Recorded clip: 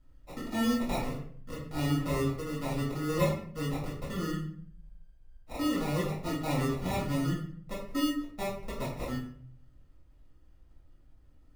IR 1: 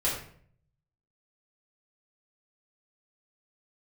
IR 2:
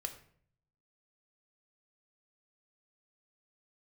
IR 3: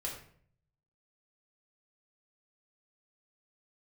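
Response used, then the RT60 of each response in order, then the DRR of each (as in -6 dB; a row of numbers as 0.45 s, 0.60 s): 1; 0.55 s, 0.55 s, 0.55 s; -7.5 dB, 5.5 dB, -3.0 dB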